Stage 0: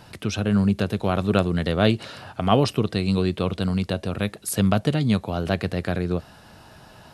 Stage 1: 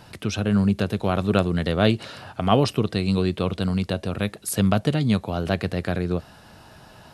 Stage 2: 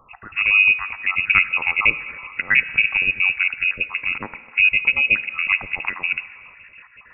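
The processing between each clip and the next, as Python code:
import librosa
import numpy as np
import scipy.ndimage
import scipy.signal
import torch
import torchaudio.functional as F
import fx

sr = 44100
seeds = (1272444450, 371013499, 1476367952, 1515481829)

y1 = x
y2 = fx.spec_dropout(y1, sr, seeds[0], share_pct=46)
y2 = fx.rev_fdn(y2, sr, rt60_s=2.7, lf_ratio=0.7, hf_ratio=0.35, size_ms=43.0, drr_db=12.5)
y2 = fx.freq_invert(y2, sr, carrier_hz=2700)
y2 = y2 * 10.0 ** (4.0 / 20.0)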